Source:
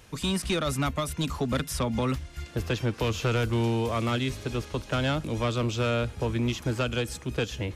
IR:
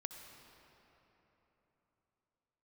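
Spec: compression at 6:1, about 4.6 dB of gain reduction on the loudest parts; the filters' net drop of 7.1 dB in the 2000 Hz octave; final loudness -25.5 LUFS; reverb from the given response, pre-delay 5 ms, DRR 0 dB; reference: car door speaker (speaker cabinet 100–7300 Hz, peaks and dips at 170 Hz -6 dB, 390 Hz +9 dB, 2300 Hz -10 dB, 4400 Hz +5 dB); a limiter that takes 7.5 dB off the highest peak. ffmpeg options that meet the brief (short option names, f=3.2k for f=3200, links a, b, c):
-filter_complex "[0:a]equalizer=f=2k:t=o:g=-6.5,acompressor=threshold=-28dB:ratio=6,alimiter=level_in=3.5dB:limit=-24dB:level=0:latency=1,volume=-3.5dB,asplit=2[a][b];[1:a]atrim=start_sample=2205,adelay=5[c];[b][c]afir=irnorm=-1:irlink=0,volume=2.5dB[d];[a][d]amix=inputs=2:normalize=0,highpass=100,equalizer=f=170:t=q:w=4:g=-6,equalizer=f=390:t=q:w=4:g=9,equalizer=f=2.3k:t=q:w=4:g=-10,equalizer=f=4.4k:t=q:w=4:g=5,lowpass=f=7.3k:w=0.5412,lowpass=f=7.3k:w=1.3066,volume=6.5dB"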